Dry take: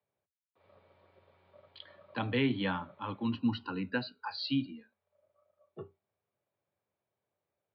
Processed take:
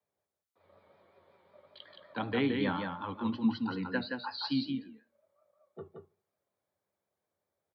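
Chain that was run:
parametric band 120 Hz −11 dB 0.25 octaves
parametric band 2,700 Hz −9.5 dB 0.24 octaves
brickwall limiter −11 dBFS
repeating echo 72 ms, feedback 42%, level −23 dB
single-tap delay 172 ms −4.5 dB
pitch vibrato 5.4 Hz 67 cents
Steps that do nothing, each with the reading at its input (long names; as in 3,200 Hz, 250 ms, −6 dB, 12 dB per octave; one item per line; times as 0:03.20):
brickwall limiter −11 dBFS: peak of its input −18.5 dBFS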